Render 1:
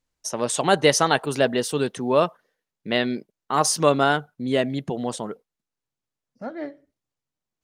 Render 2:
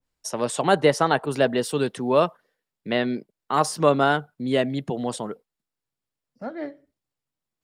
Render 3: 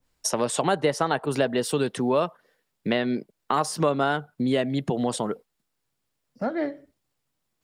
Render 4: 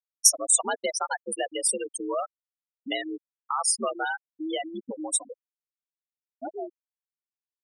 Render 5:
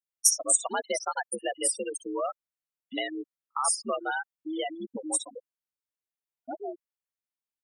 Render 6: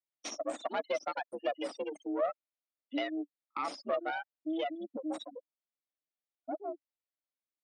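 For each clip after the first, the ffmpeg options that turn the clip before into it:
ffmpeg -i in.wav -filter_complex "[0:a]bandreject=frequency=6200:width=8.9,acrossover=split=170|2000[link_01][link_02][link_03];[link_03]alimiter=limit=-19.5dB:level=0:latency=1:release=498[link_04];[link_01][link_02][link_04]amix=inputs=3:normalize=0,adynamicequalizer=threshold=0.0355:dfrequency=1700:dqfactor=0.7:tfrequency=1700:tqfactor=0.7:attack=5:release=100:ratio=0.375:range=1.5:mode=cutabove:tftype=highshelf" out.wav
ffmpeg -i in.wav -af "acompressor=threshold=-32dB:ratio=3,volume=8.5dB" out.wav
ffmpeg -i in.wav -af "crystalizer=i=9:c=0,afreqshift=67,afftfilt=real='re*gte(hypot(re,im),0.355)':imag='im*gte(hypot(re,im),0.355)':win_size=1024:overlap=0.75,volume=-8dB" out.wav
ffmpeg -i in.wav -filter_complex "[0:a]acrossover=split=5100[link_01][link_02];[link_01]adelay=60[link_03];[link_03][link_02]amix=inputs=2:normalize=0,volume=-1.5dB" out.wav
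ffmpeg -i in.wav -af "aeval=exprs='(tanh(15.8*val(0)+0.65)-tanh(0.65))/15.8':channel_layout=same,highpass=frequency=260:width=0.5412,highpass=frequency=260:width=1.3066,equalizer=frequency=290:width_type=q:width=4:gain=8,equalizer=frequency=410:width_type=q:width=4:gain=-7,equalizer=frequency=610:width_type=q:width=4:gain=6,equalizer=frequency=970:width_type=q:width=4:gain=-4,equalizer=frequency=1600:width_type=q:width=4:gain=-5,equalizer=frequency=2900:width_type=q:width=4:gain=-4,lowpass=frequency=4300:width=0.5412,lowpass=frequency=4300:width=1.3066" out.wav

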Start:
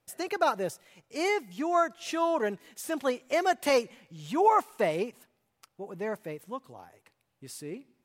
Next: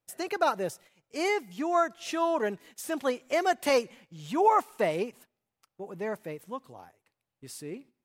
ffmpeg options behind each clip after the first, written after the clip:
ffmpeg -i in.wav -af "agate=range=-10dB:threshold=-52dB:ratio=16:detection=peak" out.wav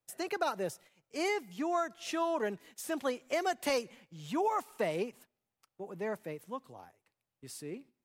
ffmpeg -i in.wav -filter_complex "[0:a]acrossover=split=170|3000[link_01][link_02][link_03];[link_02]acompressor=threshold=-25dB:ratio=6[link_04];[link_01][link_04][link_03]amix=inputs=3:normalize=0,volume=-3dB" out.wav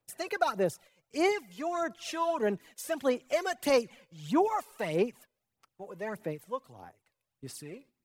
ffmpeg -i in.wav -af "aphaser=in_gain=1:out_gain=1:delay=2:decay=0.59:speed=1.6:type=sinusoidal" out.wav

